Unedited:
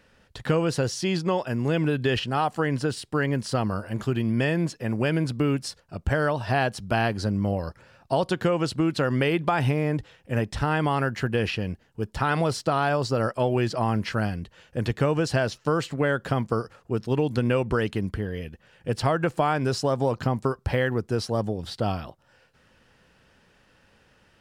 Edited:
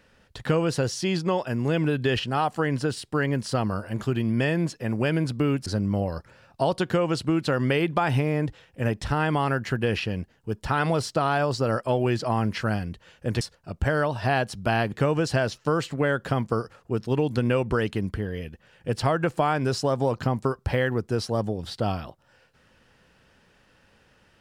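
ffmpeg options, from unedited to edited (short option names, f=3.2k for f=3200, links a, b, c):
-filter_complex "[0:a]asplit=4[a][b][c][d];[a]atrim=end=5.662[e];[b]atrim=start=7.168:end=14.922[f];[c]atrim=start=5.658:end=7.172[g];[d]atrim=start=14.918[h];[e][f]acrossfade=d=0.004:c1=hsin:c2=hsin[i];[i][g]acrossfade=d=0.004:c1=hsin:c2=hsin[j];[j][h]acrossfade=d=0.004:c1=hsin:c2=hsin"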